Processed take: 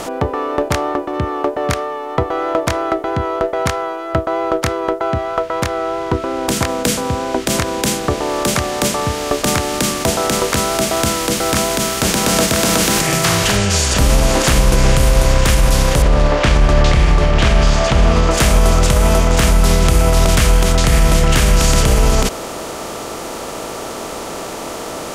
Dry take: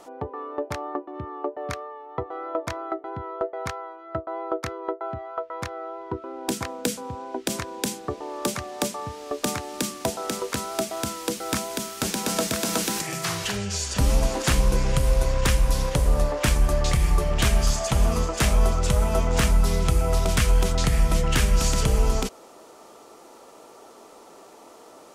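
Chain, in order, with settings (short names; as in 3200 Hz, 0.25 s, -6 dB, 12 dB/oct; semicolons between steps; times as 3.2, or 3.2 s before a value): per-bin compression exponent 0.6; 16.02–18.31 LPF 4400 Hz 12 dB/oct; maximiser +11 dB; gain -2 dB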